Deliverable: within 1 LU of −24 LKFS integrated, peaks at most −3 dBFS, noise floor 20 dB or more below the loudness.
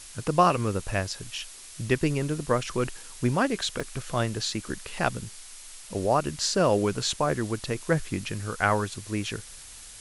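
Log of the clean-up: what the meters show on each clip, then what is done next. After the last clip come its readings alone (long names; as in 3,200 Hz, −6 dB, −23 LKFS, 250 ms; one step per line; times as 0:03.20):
number of dropouts 1; longest dropout 3.0 ms; background noise floor −45 dBFS; target noise floor −48 dBFS; integrated loudness −27.5 LKFS; sample peak −7.5 dBFS; target loudness −24.0 LKFS
→ repair the gap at 0:03.80, 3 ms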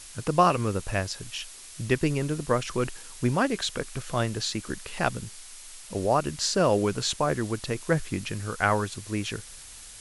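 number of dropouts 0; background noise floor −45 dBFS; target noise floor −48 dBFS
→ broadband denoise 6 dB, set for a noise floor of −45 dBFS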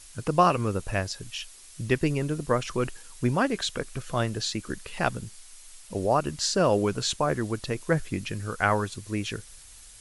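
background noise floor −49 dBFS; integrated loudness −27.5 LKFS; sample peak −7.5 dBFS; target loudness −24.0 LKFS
→ level +3.5 dB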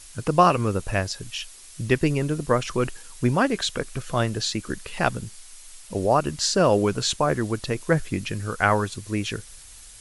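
integrated loudness −24.0 LKFS; sample peak −4.0 dBFS; background noise floor −45 dBFS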